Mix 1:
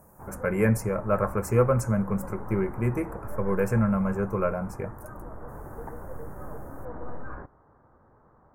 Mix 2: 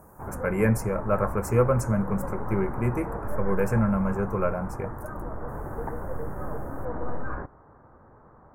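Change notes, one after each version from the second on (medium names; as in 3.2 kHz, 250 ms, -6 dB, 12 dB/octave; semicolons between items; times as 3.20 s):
speech: add Butterworth band-stop 3.5 kHz, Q 6.2; background +6.0 dB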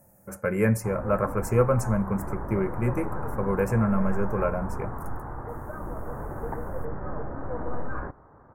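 background: entry +0.65 s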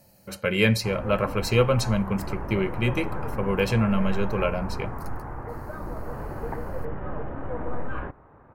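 master: remove Chebyshev band-stop 1.5–7.9 kHz, order 2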